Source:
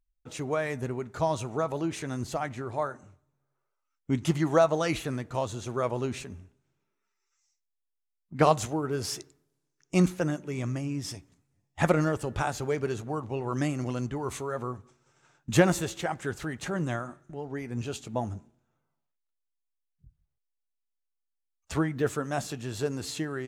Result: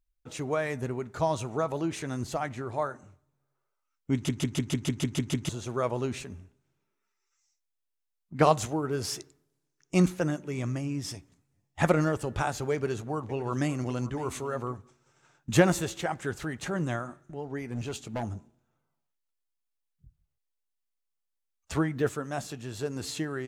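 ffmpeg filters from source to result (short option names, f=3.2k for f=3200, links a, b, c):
-filter_complex "[0:a]asettb=1/sr,asplit=3[a][b][c];[a]atrim=end=12.734[d];[b]atrim=start=12.73:end=14.75,asetpts=PTS-STARTPTS,afade=t=in:d=0.004:c=qsin,afade=t=out:st=2.016:d=0.004:c=qsin,aecho=1:1:560:0.168,atrim=end_sample=89082[e];[c]atrim=start=14.746[f];[d][e]acrossfade=d=0.004:c1=hsin:c2=qsin[g];[g][f]acrossfade=d=0.004:c1=qsin:c2=hsin,asettb=1/sr,asplit=3[h][i][j];[h]atrim=end=17.614[k];[i]atrim=start=17.61:end=18.23,asetpts=PTS-STARTPTS,afade=t=in:d=0.004:c=qsin,afade=t=out:st=0.616:d=0.004:c=qsin,asoftclip=type=hard:threshold=-28.5dB[l];[j]atrim=start=18.226[m];[k][l]acrossfade=d=0.004:c1=hsin:c2=qsin[n];[n][m]acrossfade=d=0.004:c1=qsin:c2=hsin,asplit=12[o][p][q][r][s][t][u][v][w][x][y][z];[o]atrim=end=4.292[aa];[p]atrim=start=4.138:end=4.292[ab];[q]atrim=start=4.138:end=4.292[ac];[r]atrim=start=4.138:end=4.292[ad];[s]atrim=start=4.138:end=4.292[ae];[t]atrim=start=4.138:end=4.292[af];[u]atrim=start=4.138:end=4.292[ag];[v]atrim=start=4.138:end=4.292[ah];[w]atrim=start=4.138:end=4.292[ai];[x]atrim=start=5.488:end=22.092[aj];[y]atrim=start=22.088:end=22.962,asetpts=PTS-STARTPTS,volume=-3dB[ak];[z]atrim=start=22.958[al];[aa][ab]acrossfade=d=0.004:c1=hsin:c2=hsin[am];[am][ac]acrossfade=d=0.004:c1=hsin:c2=hsin[an];[an][ad]acrossfade=d=0.004:c1=hsin:c2=hsin[ao];[ao][ae]acrossfade=d=0.004:c1=hsin:c2=hsin[ap];[ap][af]acrossfade=d=0.004:c1=hsin:c2=hsin[aq];[aq][ag]acrossfade=d=0.004:c1=hsin:c2=hsin[ar];[ar][ah]acrossfade=d=0.004:c1=hsin:c2=hsin[as];[as][ai]acrossfade=d=0.004:c1=hsin:c2=hsin[at];[at][aj]acrossfade=d=0.004:c1=hsin:c2=hsin[au];[au][ak]acrossfade=d=0.004:c1=hsin:c2=hsin[av];[av][al]acrossfade=d=0.004:c1=hsin:c2=hsin"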